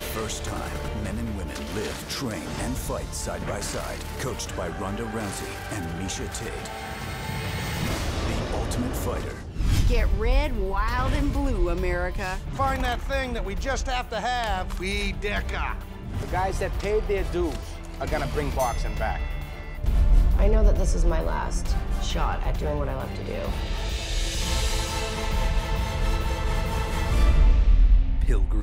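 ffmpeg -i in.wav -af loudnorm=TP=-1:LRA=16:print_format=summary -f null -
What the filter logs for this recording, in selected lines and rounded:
Input Integrated:    -27.2 LUFS
Input True Peak:      -8.1 dBTP
Input LRA:             5.9 LU
Input Threshold:     -37.3 LUFS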